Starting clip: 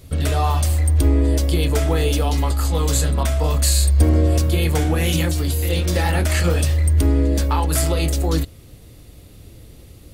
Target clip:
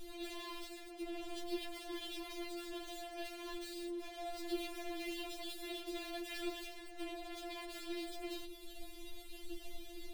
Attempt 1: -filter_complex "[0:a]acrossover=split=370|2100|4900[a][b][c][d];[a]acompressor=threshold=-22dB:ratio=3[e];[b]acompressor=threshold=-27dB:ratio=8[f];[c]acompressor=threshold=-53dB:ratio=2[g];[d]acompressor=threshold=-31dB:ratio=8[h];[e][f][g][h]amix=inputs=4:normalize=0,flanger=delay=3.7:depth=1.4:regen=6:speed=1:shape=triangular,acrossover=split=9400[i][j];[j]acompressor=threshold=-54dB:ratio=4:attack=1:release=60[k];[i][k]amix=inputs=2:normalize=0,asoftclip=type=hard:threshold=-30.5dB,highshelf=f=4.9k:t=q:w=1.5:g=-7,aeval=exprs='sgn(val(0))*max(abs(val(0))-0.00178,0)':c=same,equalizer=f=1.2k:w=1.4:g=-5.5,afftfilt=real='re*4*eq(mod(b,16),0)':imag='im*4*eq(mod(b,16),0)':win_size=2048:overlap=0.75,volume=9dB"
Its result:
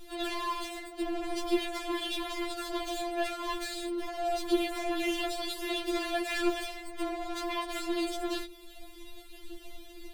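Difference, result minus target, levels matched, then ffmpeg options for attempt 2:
1000 Hz band +2.5 dB; hard clip: distortion -4 dB
-filter_complex "[0:a]acrossover=split=370|2100|4900[a][b][c][d];[a]acompressor=threshold=-22dB:ratio=3[e];[b]acompressor=threshold=-27dB:ratio=8[f];[c]acompressor=threshold=-53dB:ratio=2[g];[d]acompressor=threshold=-31dB:ratio=8[h];[e][f][g][h]amix=inputs=4:normalize=0,flanger=delay=3.7:depth=1.4:regen=6:speed=1:shape=triangular,acrossover=split=9400[i][j];[j]acompressor=threshold=-54dB:ratio=4:attack=1:release=60[k];[i][k]amix=inputs=2:normalize=0,asoftclip=type=hard:threshold=-41.5dB,highshelf=f=4.9k:t=q:w=1.5:g=-7,aeval=exprs='sgn(val(0))*max(abs(val(0))-0.00178,0)':c=same,equalizer=f=1.2k:w=1.4:g=-14,afftfilt=real='re*4*eq(mod(b,16),0)':imag='im*4*eq(mod(b,16),0)':win_size=2048:overlap=0.75,volume=9dB"

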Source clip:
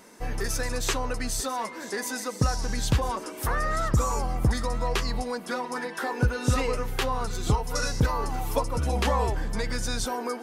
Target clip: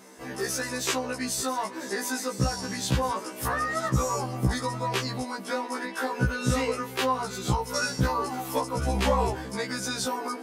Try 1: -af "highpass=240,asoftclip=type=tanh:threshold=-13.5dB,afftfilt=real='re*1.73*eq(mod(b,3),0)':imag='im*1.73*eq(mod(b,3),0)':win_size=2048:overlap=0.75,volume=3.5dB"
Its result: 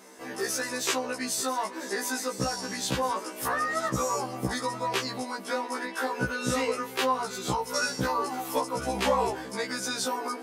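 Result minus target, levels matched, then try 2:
125 Hz band -8.0 dB
-af "highpass=100,asoftclip=type=tanh:threshold=-13.5dB,afftfilt=real='re*1.73*eq(mod(b,3),0)':imag='im*1.73*eq(mod(b,3),0)':win_size=2048:overlap=0.75,volume=3.5dB"

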